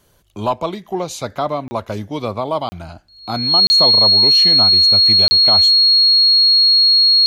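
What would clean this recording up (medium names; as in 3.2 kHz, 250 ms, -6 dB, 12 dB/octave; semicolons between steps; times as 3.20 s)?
band-stop 4.3 kHz, Q 30; interpolate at 1.68/2.69/3.67/5.28 s, 30 ms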